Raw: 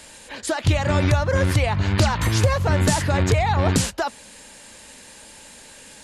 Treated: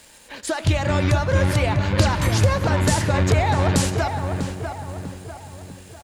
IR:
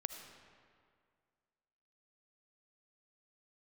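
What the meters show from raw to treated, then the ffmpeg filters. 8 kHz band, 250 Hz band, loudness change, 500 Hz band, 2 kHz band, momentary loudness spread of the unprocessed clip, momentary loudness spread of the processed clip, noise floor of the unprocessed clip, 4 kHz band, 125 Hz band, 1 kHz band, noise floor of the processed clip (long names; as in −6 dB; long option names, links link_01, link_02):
−0.5 dB, +1.0 dB, 0.0 dB, +0.5 dB, 0.0 dB, 8 LU, 18 LU, −45 dBFS, −0.5 dB, +0.5 dB, +0.5 dB, −48 dBFS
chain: -filter_complex "[0:a]aeval=exprs='sgn(val(0))*max(abs(val(0))-0.00355,0)':channel_layout=same,asplit=2[link_01][link_02];[link_02]adelay=647,lowpass=frequency=2000:poles=1,volume=-6dB,asplit=2[link_03][link_04];[link_04]adelay=647,lowpass=frequency=2000:poles=1,volume=0.46,asplit=2[link_05][link_06];[link_06]adelay=647,lowpass=frequency=2000:poles=1,volume=0.46,asplit=2[link_07][link_08];[link_08]adelay=647,lowpass=frequency=2000:poles=1,volume=0.46,asplit=2[link_09][link_10];[link_10]adelay=647,lowpass=frequency=2000:poles=1,volume=0.46,asplit=2[link_11][link_12];[link_12]adelay=647,lowpass=frequency=2000:poles=1,volume=0.46[link_13];[link_01][link_03][link_05][link_07][link_09][link_11][link_13]amix=inputs=7:normalize=0,asplit=2[link_14][link_15];[1:a]atrim=start_sample=2205[link_16];[link_15][link_16]afir=irnorm=-1:irlink=0,volume=0dB[link_17];[link_14][link_17]amix=inputs=2:normalize=0,volume=-5.5dB"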